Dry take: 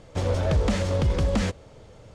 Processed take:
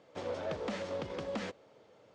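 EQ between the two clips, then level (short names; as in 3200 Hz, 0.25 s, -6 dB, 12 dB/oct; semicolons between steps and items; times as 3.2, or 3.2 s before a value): HPF 280 Hz 12 dB/oct; air absorption 100 m; -8.5 dB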